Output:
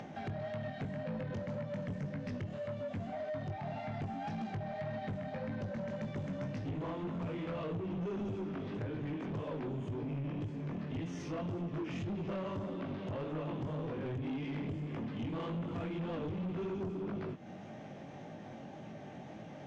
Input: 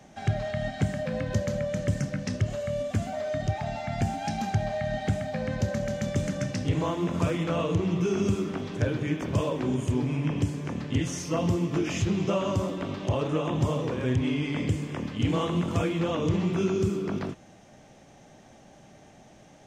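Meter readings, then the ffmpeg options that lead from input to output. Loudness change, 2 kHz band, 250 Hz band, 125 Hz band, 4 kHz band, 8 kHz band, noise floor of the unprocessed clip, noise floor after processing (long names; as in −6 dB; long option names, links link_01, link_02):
−11.5 dB, −11.5 dB, −10.0 dB, −11.5 dB, −15.0 dB, below −20 dB, −53 dBFS, −48 dBFS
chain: -af "flanger=delay=18:depth=4.1:speed=1.8,lowpass=3200,acompressor=threshold=-44dB:ratio=2,highpass=130,lowshelf=frequency=320:gain=6.5,asoftclip=type=tanh:threshold=-36.5dB,acompressor=mode=upward:threshold=-44dB:ratio=2.5,volume=2.5dB"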